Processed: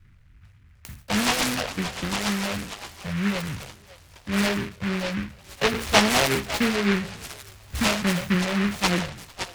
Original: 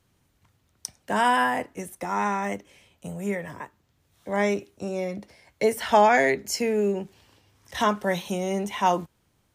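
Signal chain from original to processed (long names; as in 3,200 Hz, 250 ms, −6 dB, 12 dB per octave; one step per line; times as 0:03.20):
peak hold with a decay on every bin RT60 0.50 s
RIAA equalisation playback
on a send: echo through a band-pass that steps 554 ms, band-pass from 960 Hz, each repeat 0.7 octaves, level −9 dB
on the sum: all-pass phaser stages 8, 3.5 Hz, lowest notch 270–1,000 Hz
short delay modulated by noise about 1,700 Hz, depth 0.27 ms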